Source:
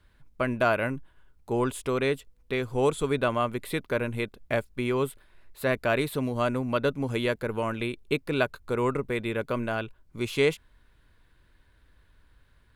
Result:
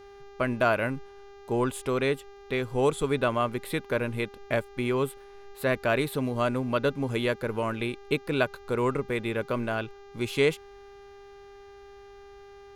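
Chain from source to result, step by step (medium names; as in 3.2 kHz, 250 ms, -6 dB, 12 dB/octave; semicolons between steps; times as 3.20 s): mains buzz 400 Hz, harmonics 17, -49 dBFS -8 dB/octave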